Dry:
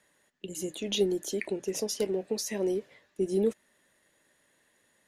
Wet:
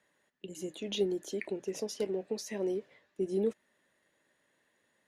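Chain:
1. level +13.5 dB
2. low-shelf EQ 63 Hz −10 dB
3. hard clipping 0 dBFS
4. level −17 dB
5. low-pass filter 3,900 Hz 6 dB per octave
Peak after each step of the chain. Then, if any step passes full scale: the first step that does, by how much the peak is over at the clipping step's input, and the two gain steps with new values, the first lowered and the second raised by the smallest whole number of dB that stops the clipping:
−2.0, −2.5, −2.5, −19.5, −19.5 dBFS
no step passes full scale

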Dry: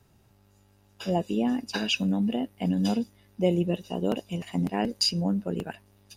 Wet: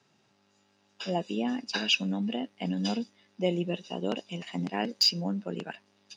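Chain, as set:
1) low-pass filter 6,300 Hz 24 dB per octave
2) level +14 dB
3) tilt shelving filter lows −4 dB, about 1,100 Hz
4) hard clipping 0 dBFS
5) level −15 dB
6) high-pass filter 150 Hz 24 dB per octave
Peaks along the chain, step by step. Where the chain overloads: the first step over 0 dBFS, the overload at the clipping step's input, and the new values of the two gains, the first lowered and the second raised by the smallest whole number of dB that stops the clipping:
−12.0, +2.0, +4.5, 0.0, −15.0, −14.5 dBFS
step 2, 4.5 dB
step 2 +9 dB, step 5 −10 dB

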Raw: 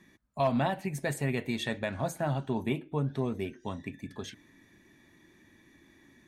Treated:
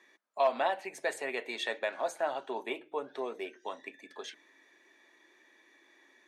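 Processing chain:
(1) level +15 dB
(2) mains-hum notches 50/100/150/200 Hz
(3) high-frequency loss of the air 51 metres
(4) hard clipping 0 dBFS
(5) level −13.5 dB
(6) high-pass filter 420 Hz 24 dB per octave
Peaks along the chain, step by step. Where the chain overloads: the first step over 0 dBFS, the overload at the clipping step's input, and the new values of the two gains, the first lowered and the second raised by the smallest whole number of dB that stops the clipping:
−2.0, −2.0, −2.0, −2.0, −15.5, −14.5 dBFS
no step passes full scale

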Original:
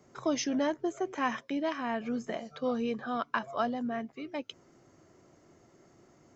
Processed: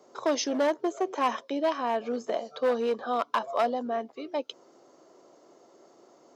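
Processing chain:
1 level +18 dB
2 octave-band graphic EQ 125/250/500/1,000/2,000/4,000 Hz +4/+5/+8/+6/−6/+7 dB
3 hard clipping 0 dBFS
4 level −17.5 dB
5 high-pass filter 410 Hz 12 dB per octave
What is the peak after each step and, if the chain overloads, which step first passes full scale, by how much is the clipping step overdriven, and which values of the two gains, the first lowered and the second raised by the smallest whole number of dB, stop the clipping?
+2.5, +7.5, 0.0, −17.5, −13.5 dBFS
step 1, 7.5 dB
step 1 +10 dB, step 4 −9.5 dB

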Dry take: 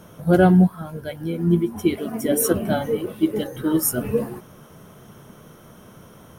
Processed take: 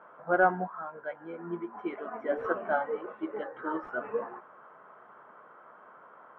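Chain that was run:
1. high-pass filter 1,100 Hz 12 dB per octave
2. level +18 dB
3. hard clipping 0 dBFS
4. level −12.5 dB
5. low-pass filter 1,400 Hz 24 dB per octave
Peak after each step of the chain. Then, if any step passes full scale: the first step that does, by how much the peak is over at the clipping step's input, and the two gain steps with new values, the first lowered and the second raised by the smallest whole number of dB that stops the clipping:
−8.5, +9.5, 0.0, −12.5, −12.5 dBFS
step 2, 9.5 dB
step 2 +8 dB, step 4 −2.5 dB

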